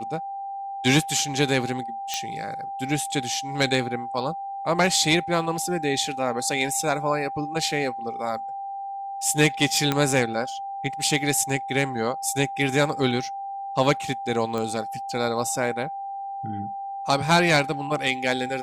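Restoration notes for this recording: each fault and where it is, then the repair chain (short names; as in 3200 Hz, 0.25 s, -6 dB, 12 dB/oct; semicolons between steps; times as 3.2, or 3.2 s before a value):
tone 790 Hz -30 dBFS
2.14 pop -11 dBFS
9.92 pop -8 dBFS
14.58 pop -16 dBFS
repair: de-click; notch 790 Hz, Q 30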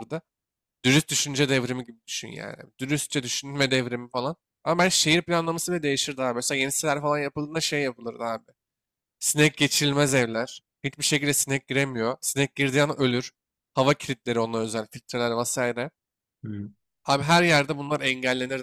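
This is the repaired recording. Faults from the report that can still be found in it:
none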